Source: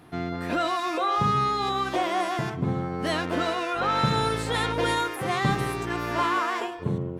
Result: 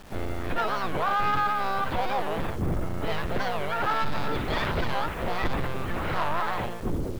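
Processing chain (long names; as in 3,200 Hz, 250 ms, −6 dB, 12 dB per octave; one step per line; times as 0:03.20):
linear-prediction vocoder at 8 kHz pitch kept
pitch-shifted copies added −7 semitones −4 dB, +4 semitones −11 dB, +5 semitones −13 dB
bit-depth reduction 8 bits, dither none
soft clipping −19 dBFS, distortion −12 dB
wow of a warped record 45 rpm, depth 250 cents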